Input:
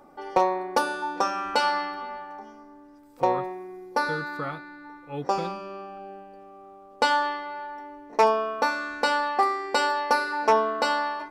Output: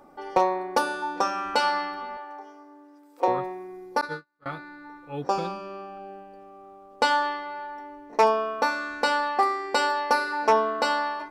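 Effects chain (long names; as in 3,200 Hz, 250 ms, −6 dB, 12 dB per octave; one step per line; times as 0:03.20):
0:02.17–0:03.28: elliptic high-pass filter 290 Hz
0:04.01–0:04.46: noise gate −26 dBFS, range −44 dB
0:04.98–0:05.64: notch filter 2,000 Hz, Q 8.9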